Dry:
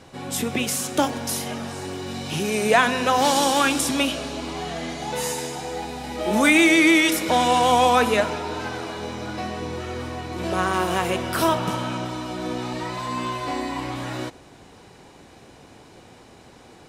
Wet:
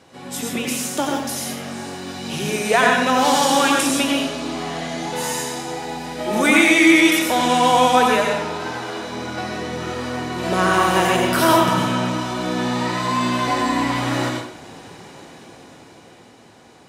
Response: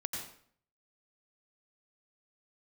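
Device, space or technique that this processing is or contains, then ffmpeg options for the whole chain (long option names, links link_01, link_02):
far laptop microphone: -filter_complex "[1:a]atrim=start_sample=2205[link_01];[0:a][link_01]afir=irnorm=-1:irlink=0,highpass=frequency=170:poles=1,dynaudnorm=framelen=150:gausssize=21:maxgain=9dB,volume=-1dB"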